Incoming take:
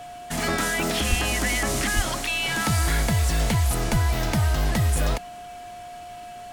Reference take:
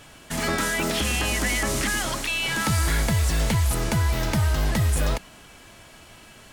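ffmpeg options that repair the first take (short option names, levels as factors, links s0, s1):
-filter_complex "[0:a]adeclick=t=4,bandreject=f=710:w=30,asplit=3[s0][s1][s2];[s0]afade=t=out:st=1.09:d=0.02[s3];[s1]highpass=f=140:w=0.5412,highpass=f=140:w=1.3066,afade=t=in:st=1.09:d=0.02,afade=t=out:st=1.21:d=0.02[s4];[s2]afade=t=in:st=1.21:d=0.02[s5];[s3][s4][s5]amix=inputs=3:normalize=0,asplit=3[s6][s7][s8];[s6]afade=t=out:st=1.95:d=0.02[s9];[s7]highpass=f=140:w=0.5412,highpass=f=140:w=1.3066,afade=t=in:st=1.95:d=0.02,afade=t=out:st=2.07:d=0.02[s10];[s8]afade=t=in:st=2.07:d=0.02[s11];[s9][s10][s11]amix=inputs=3:normalize=0,asplit=3[s12][s13][s14];[s12]afade=t=out:st=3.91:d=0.02[s15];[s13]highpass=f=140:w=0.5412,highpass=f=140:w=1.3066,afade=t=in:st=3.91:d=0.02,afade=t=out:st=4.03:d=0.02[s16];[s14]afade=t=in:st=4.03:d=0.02[s17];[s15][s16][s17]amix=inputs=3:normalize=0"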